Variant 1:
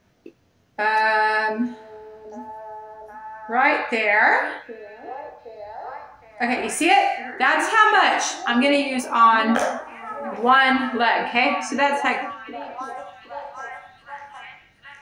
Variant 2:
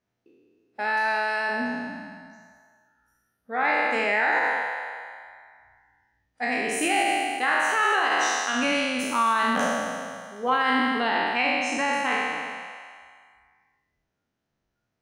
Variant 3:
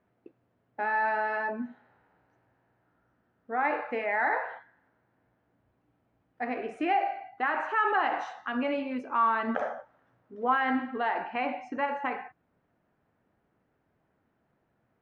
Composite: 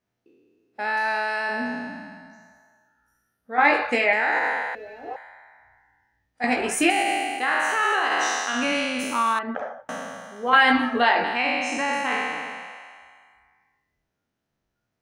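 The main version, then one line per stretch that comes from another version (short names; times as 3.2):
2
3.58–4.13 from 1
4.75–5.16 from 1
6.44–6.9 from 1
9.39–9.89 from 3
10.53–11.24 from 1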